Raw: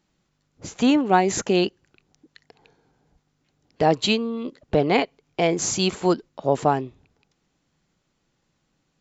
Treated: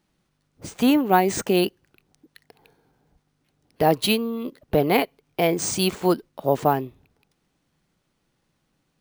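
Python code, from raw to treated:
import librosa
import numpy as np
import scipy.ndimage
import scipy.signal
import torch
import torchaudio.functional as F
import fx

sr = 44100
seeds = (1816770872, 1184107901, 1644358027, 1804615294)

y = np.repeat(scipy.signal.resample_poly(x, 1, 3), 3)[:len(x)]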